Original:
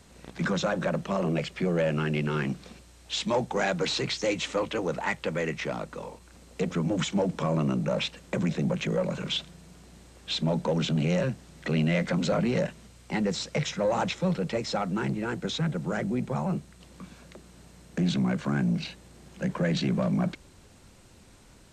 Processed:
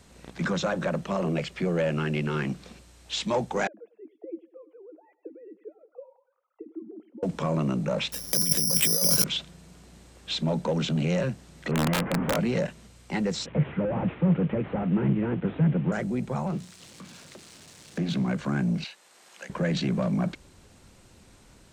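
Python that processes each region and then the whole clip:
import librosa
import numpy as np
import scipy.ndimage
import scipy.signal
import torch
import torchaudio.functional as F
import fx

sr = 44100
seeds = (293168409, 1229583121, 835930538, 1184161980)

y = fx.chain(x, sr, fx.sine_speech(),
    fx.auto_wah(base_hz=320.0, top_hz=1400.0, q=12.0, full_db=-29.0, direction='down'),
    fx.echo_feedback(ms=99, feedback_pct=44, wet_db=-18), at=(3.67, 7.23))
y = fx.chain(y, sr, fx.resample_bad(factor=8, down='filtered', up='zero_stuff'),
    fx.over_compress(threshold_db=-23.0, ratio=-1.0), at=(8.12, 9.24))
y = fx.chain(y, sr, fx.delta_mod(bps=16000, step_db=-24.5),
    fx.lowpass(hz=1200.0, slope=12),
    fx.overflow_wrap(gain_db=18.0), at=(11.71, 12.36))
y = fx.chain(y, sr, fx.delta_mod(bps=16000, step_db=-43.0),
    fx.highpass(hz=95.0, slope=12),
    fx.low_shelf(hz=360.0, db=8.5), at=(13.46, 15.92))
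y = fx.chain(y, sr, fx.crossing_spikes(level_db=-31.0),
    fx.air_absorb(metres=92.0),
    fx.hum_notches(base_hz=60, count=4), at=(16.47, 18.28))
y = fx.chain(y, sr, fx.highpass(hz=820.0, slope=12),
    fx.band_squash(depth_pct=40), at=(18.84, 19.5))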